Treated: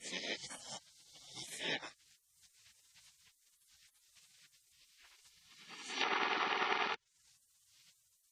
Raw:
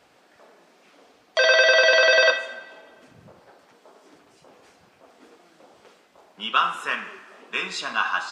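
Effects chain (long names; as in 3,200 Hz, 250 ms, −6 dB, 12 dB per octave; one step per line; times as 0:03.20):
played backwards from end to start
gate on every frequency bin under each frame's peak −25 dB weak
treble cut that deepens with the level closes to 2,100 Hz, closed at −32.5 dBFS
level +3 dB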